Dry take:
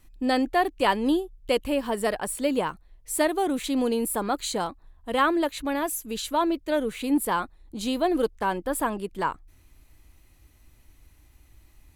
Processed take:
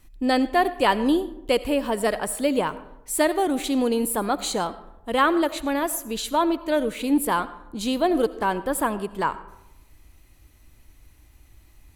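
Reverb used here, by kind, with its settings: digital reverb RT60 0.88 s, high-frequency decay 0.5×, pre-delay 40 ms, DRR 15 dB; gain +2.5 dB

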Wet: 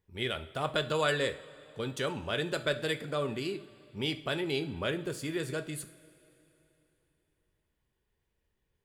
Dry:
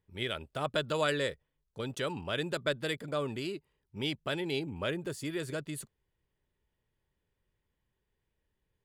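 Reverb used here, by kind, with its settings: two-slope reverb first 0.39 s, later 3.2 s, from -18 dB, DRR 7.5 dB; gain +1 dB

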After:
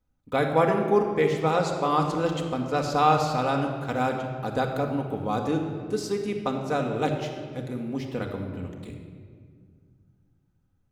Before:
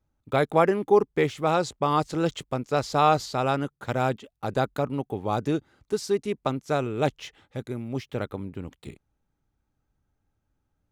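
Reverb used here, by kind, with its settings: shoebox room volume 3300 m³, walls mixed, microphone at 1.9 m; gain -2.5 dB

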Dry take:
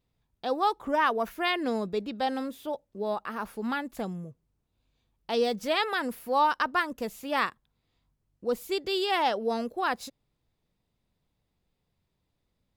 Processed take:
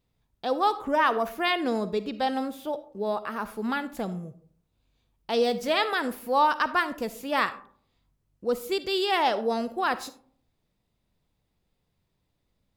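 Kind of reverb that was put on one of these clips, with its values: digital reverb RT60 0.55 s, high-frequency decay 0.4×, pre-delay 15 ms, DRR 13 dB; gain +2 dB

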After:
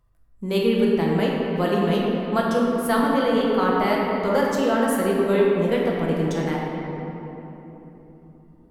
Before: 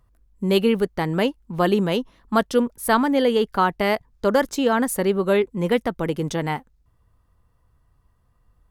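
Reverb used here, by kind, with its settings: shoebox room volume 210 m³, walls hard, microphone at 0.75 m; gain -6 dB

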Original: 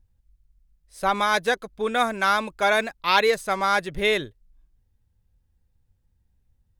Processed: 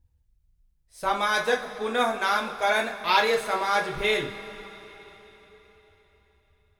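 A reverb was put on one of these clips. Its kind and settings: two-slope reverb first 0.29 s, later 4.1 s, from -19 dB, DRR -0.5 dB; gain -5 dB

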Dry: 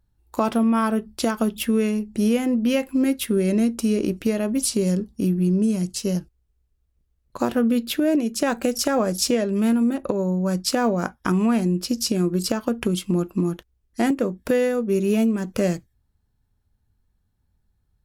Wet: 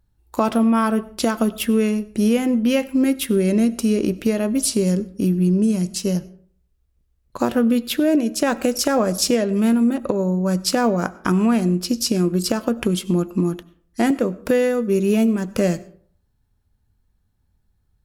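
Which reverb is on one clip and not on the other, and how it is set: digital reverb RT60 0.53 s, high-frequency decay 0.55×, pre-delay 55 ms, DRR 19 dB; gain +2.5 dB

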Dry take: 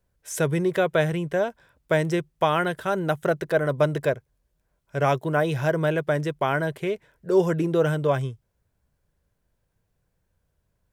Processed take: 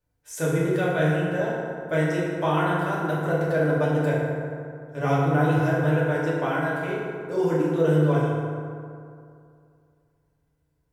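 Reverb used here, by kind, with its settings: FDN reverb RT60 2.4 s, low-frequency decay 1.05×, high-frequency decay 0.45×, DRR -8 dB; gain -9.5 dB

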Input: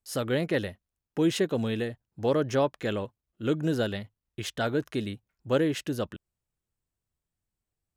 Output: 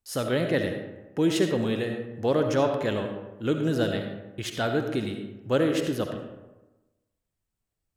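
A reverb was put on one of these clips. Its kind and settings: digital reverb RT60 1.1 s, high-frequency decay 0.5×, pre-delay 30 ms, DRR 4.5 dB; gain +1 dB

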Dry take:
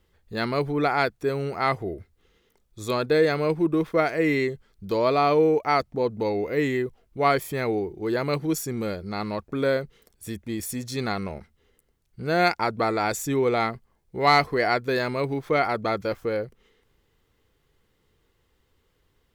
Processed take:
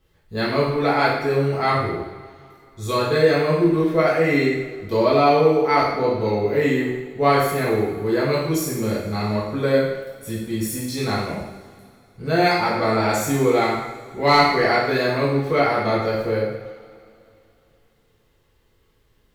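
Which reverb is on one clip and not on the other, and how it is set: two-slope reverb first 0.84 s, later 2.9 s, from -18 dB, DRR -7 dB; gain -3 dB

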